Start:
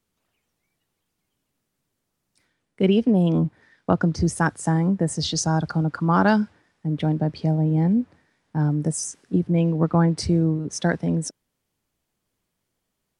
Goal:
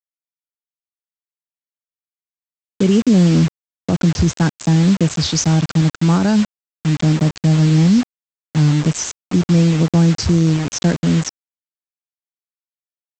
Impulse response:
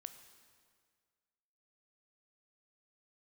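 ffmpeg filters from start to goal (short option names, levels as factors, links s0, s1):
-af "equalizer=f=1200:w=0.43:g=-13,aresample=16000,acrusher=bits=5:mix=0:aa=0.000001,aresample=44100,alimiter=level_in=5.62:limit=0.891:release=50:level=0:latency=1,volume=0.562"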